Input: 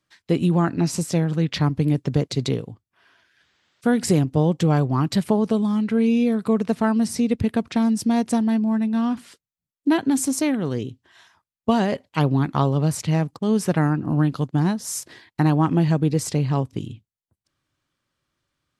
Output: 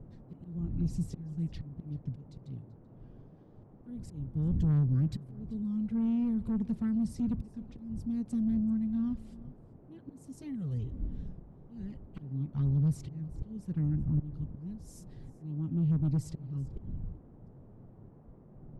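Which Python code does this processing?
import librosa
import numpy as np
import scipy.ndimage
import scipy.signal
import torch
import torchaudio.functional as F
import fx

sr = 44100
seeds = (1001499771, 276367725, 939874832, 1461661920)

p1 = fx.dmg_wind(x, sr, seeds[0], corner_hz=220.0, level_db=-35.0)
p2 = fx.tilt_shelf(p1, sr, db=9.5, hz=830.0)
p3 = fx.env_flanger(p2, sr, rest_ms=9.5, full_db=-7.0)
p4 = fx.auto_swell(p3, sr, attack_ms=690.0)
p5 = fx.fold_sine(p4, sr, drive_db=9, ceiling_db=-1.5)
p6 = p4 + F.gain(torch.from_numpy(p5), -8.5).numpy()
p7 = fx.dmg_noise_band(p6, sr, seeds[1], low_hz=110.0, high_hz=720.0, level_db=-31.0)
p8 = fx.tone_stack(p7, sr, knobs='6-0-2')
p9 = p8 + fx.echo_single(p8, sr, ms=385, db=-20.5, dry=0)
y = F.gain(torch.from_numpy(p9), -4.0).numpy()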